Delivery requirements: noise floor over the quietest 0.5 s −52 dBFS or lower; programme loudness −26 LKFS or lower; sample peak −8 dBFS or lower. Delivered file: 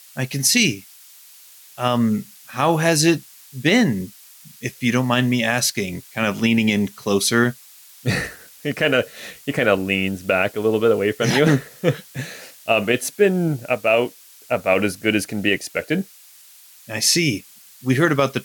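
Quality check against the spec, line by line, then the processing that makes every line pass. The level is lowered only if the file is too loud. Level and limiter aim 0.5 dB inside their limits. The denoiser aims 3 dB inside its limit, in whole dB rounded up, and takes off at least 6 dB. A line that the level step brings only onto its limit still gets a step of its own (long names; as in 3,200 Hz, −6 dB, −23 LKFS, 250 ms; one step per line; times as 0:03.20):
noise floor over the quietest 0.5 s −47 dBFS: out of spec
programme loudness −20.0 LKFS: out of spec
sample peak −3.5 dBFS: out of spec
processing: level −6.5 dB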